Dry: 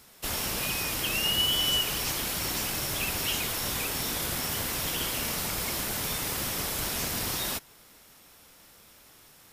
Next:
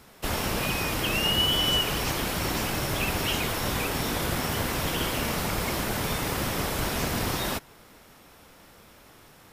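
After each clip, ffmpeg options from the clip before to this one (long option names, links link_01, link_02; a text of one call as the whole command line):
ffmpeg -i in.wav -af "highshelf=frequency=2900:gain=-11.5,volume=7.5dB" out.wav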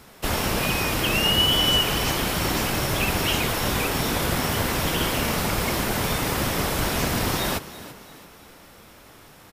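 ffmpeg -i in.wav -filter_complex "[0:a]asplit=5[link_01][link_02][link_03][link_04][link_05];[link_02]adelay=336,afreqshift=50,volume=-16dB[link_06];[link_03]adelay=672,afreqshift=100,volume=-23.5dB[link_07];[link_04]adelay=1008,afreqshift=150,volume=-31.1dB[link_08];[link_05]adelay=1344,afreqshift=200,volume=-38.6dB[link_09];[link_01][link_06][link_07][link_08][link_09]amix=inputs=5:normalize=0,volume=4dB" out.wav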